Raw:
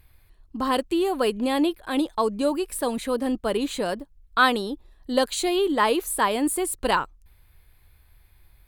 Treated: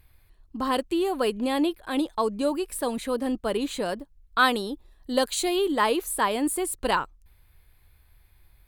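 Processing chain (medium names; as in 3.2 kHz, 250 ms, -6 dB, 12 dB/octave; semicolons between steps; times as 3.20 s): 4.39–5.87 s: treble shelf 6.1 kHz +4.5 dB; trim -2 dB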